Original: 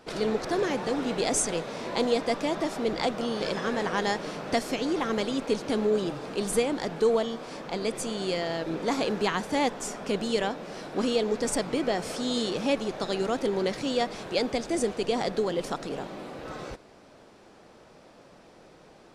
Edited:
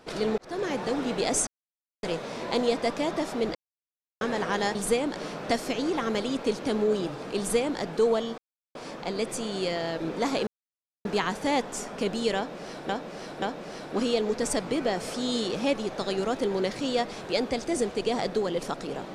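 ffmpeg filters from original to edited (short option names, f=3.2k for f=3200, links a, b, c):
-filter_complex "[0:a]asplit=11[a][b][c][d][e][f][g][h][i][j][k];[a]atrim=end=0.38,asetpts=PTS-STARTPTS,afade=t=out:st=0.376:d=0.004:c=hsin[l];[b]atrim=start=0.38:end=1.47,asetpts=PTS-STARTPTS,afade=t=in:d=0.51:c=qsin,afade=t=out:st=1.086:d=0.004:c=hsin,apad=pad_dur=0.56[m];[c]atrim=start=1.47:end=2.99,asetpts=PTS-STARTPTS,afade=t=in:d=0.004:c=hsin,afade=t=out:st=1.516:d=0.004:c=hsin[n];[d]atrim=start=2.99:end=3.65,asetpts=PTS-STARTPTS,volume=0[o];[e]atrim=start=3.65:end=4.192,asetpts=PTS-STARTPTS,afade=t=in:d=0.004:c=hsin[p];[f]atrim=start=6.408:end=6.822[q];[g]atrim=start=4.188:end=7.41,asetpts=PTS-STARTPTS,afade=t=out:st=3.218:d=0.004:c=hsin,apad=pad_dur=0.37[r];[h]atrim=start=7.41:end=9.13,asetpts=PTS-STARTPTS,afade=t=in:d=0.004:c=hsin,afade=t=out:st=1.716:d=0.004:c=hsin,apad=pad_dur=0.58[s];[i]atrim=start=9.13:end=10.972,asetpts=PTS-STARTPTS,afade=t=in:d=0.004:c=hsin[t];[j]atrim=start=10.438:end=10.972[u];[k]atrim=start=10.438[v];[l][m][n][o][p]concat=n=5:v=0:a=1[w];[w][q]acrossfade=d=0.004:c1=hsin:c2=hsin[x];[r][s][t]concat=n=3:v=0:a=1[y];[x][y]acrossfade=d=0.004:c1=hsin:c2=hsin[z];[z][u]acrossfade=d=0.004:c1=hsin:c2=hsin[aa];[aa][v]acrossfade=d=0.004:c1=hsin:c2=hsin"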